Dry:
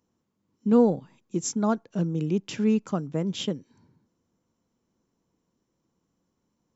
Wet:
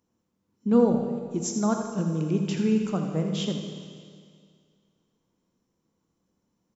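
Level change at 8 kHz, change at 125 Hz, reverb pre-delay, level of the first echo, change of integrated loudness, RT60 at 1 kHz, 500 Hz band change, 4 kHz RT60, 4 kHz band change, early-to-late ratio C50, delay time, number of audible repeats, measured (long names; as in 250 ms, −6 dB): can't be measured, +1.5 dB, 26 ms, −9.0 dB, 0.0 dB, 2.1 s, 0.0 dB, 2.1 s, +0.5 dB, 4.0 dB, 83 ms, 2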